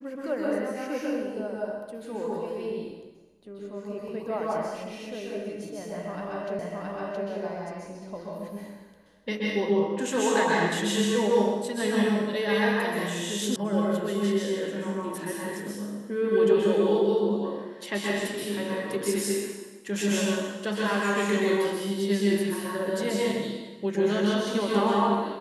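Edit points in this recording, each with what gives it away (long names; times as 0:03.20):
0:06.59: the same again, the last 0.67 s
0:13.56: cut off before it has died away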